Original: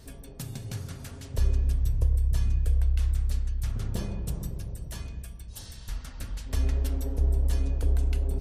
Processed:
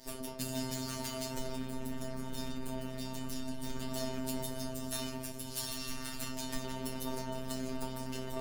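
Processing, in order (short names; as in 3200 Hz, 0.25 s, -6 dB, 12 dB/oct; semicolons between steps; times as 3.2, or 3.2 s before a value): diffused feedback echo 0.606 s, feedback 55%, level -15.5 dB; fuzz box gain 42 dB, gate -46 dBFS; metallic resonator 220 Hz, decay 0.51 s, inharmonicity 0.002; robotiser 130 Hz; gain +3 dB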